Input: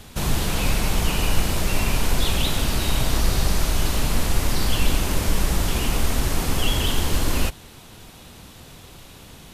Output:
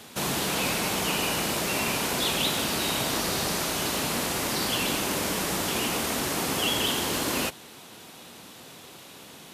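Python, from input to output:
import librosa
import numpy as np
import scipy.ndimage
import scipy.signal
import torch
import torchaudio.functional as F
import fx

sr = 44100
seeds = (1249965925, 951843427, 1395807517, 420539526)

y = scipy.signal.sosfilt(scipy.signal.butter(2, 220.0, 'highpass', fs=sr, output='sos'), x)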